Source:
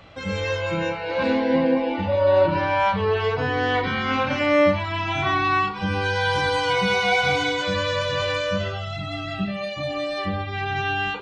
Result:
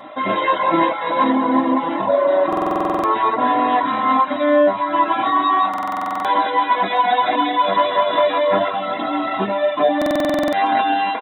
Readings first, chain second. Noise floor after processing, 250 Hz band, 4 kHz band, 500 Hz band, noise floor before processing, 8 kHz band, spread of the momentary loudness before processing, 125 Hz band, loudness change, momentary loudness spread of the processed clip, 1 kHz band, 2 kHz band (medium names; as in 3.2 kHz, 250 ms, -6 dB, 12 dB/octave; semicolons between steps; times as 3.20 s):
-25 dBFS, +5.0 dB, -1.0 dB, +3.5 dB, -31 dBFS, no reading, 9 LU, under -10 dB, +4.5 dB, 4 LU, +9.0 dB, -1.5 dB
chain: comb filter that takes the minimum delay 3.7 ms; in parallel at +2 dB: peak limiter -16 dBFS, peak gain reduction 7 dB; on the sum: graphic EQ with 31 bands 400 Hz -6 dB, 630 Hz +7 dB, 1 kHz +11 dB, 2 kHz +9 dB; reverb removal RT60 0.72 s; band-stop 1.2 kHz, Q 13; delay 420 ms -21 dB; FFT band-pass 110–4000 Hz; peaking EQ 2.4 kHz -14.5 dB 0.86 oct; comb 2.9 ms, depth 66%; gain riding within 4 dB 0.5 s; speakerphone echo 380 ms, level -11 dB; buffer glitch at 2.48/5.69/9.97 s, samples 2048, times 11